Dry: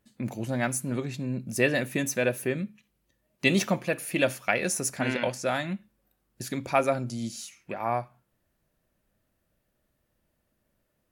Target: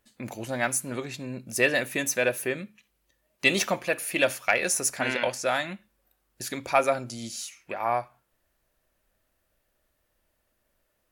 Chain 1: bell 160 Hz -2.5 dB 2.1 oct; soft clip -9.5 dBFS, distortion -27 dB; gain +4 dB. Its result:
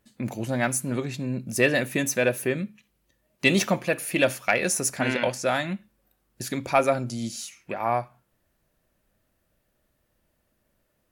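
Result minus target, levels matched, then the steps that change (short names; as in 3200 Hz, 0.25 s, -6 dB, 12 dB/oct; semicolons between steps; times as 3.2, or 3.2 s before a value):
125 Hz band +7.0 dB
change: bell 160 Hz -12 dB 2.1 oct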